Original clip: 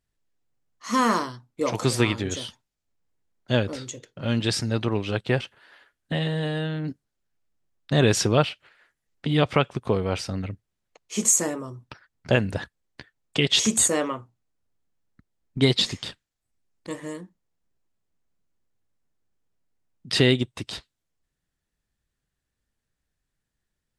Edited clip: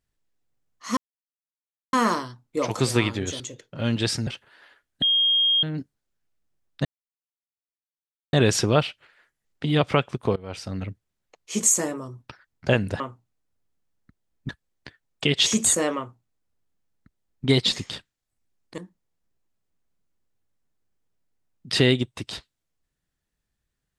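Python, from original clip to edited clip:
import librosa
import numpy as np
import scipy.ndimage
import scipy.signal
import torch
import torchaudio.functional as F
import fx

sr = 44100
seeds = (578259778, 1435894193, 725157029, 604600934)

y = fx.edit(x, sr, fx.insert_silence(at_s=0.97, length_s=0.96),
    fx.cut(start_s=2.44, length_s=1.4),
    fx.cut(start_s=4.71, length_s=0.66),
    fx.bleep(start_s=6.12, length_s=0.61, hz=3240.0, db=-17.0),
    fx.insert_silence(at_s=7.95, length_s=1.48),
    fx.fade_in_from(start_s=9.98, length_s=0.46, floor_db=-22.5),
    fx.duplicate(start_s=14.1, length_s=1.49, to_s=12.62),
    fx.cut(start_s=16.91, length_s=0.27), tone=tone)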